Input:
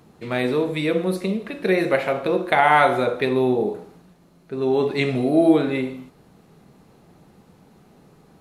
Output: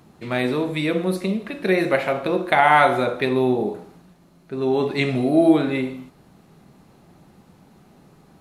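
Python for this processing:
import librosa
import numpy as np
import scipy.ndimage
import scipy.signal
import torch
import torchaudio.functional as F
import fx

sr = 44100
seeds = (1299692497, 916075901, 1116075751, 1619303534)

y = fx.peak_eq(x, sr, hz=460.0, db=-6.0, octaves=0.24)
y = F.gain(torch.from_numpy(y), 1.0).numpy()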